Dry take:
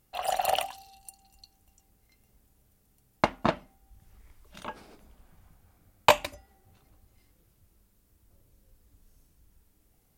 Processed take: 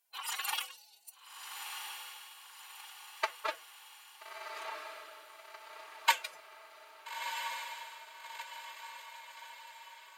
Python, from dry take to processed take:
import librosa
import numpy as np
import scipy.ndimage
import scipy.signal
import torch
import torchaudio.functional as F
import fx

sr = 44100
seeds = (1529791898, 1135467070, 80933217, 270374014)

y = scipy.signal.sosfilt(scipy.signal.butter(2, 1100.0, 'highpass', fs=sr, output='sos'), x)
y = fx.pitch_keep_formants(y, sr, semitones=11.0)
y = fx.echo_diffused(y, sr, ms=1328, feedback_pct=52, wet_db=-5)
y = F.gain(torch.from_numpy(y), -2.0).numpy()